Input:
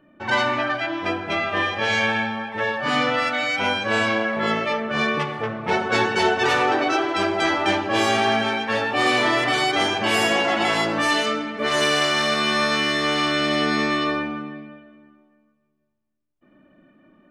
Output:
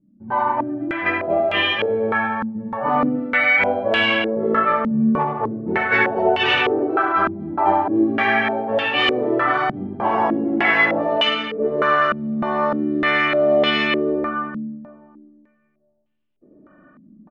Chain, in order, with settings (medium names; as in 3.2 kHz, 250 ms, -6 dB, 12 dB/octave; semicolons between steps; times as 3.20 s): loudspeakers at several distances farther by 26 m -7 dB, 59 m -12 dB; level rider gain up to 9 dB; step-sequenced low-pass 3.3 Hz 210–2900 Hz; trim -7.5 dB